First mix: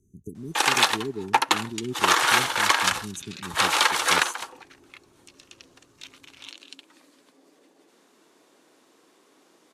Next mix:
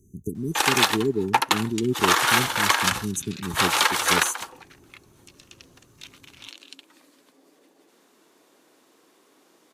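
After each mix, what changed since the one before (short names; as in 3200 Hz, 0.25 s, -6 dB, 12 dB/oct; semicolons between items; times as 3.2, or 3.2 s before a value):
speech +8.0 dB; master: remove LPF 11000 Hz 12 dB/oct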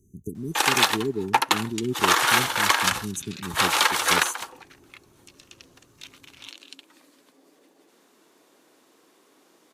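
speech -3.5 dB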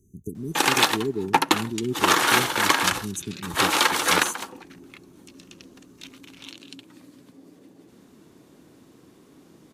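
background: remove HPF 530 Hz 12 dB/oct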